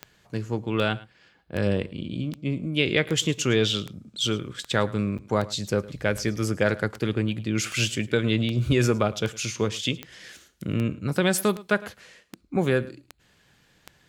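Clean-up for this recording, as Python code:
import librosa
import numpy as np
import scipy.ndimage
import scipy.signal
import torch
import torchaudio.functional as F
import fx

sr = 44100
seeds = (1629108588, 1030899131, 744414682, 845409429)

y = fx.fix_declick_ar(x, sr, threshold=10.0)
y = fx.fix_interpolate(y, sr, at_s=(5.18,), length_ms=6.7)
y = fx.fix_echo_inverse(y, sr, delay_ms=108, level_db=-20.0)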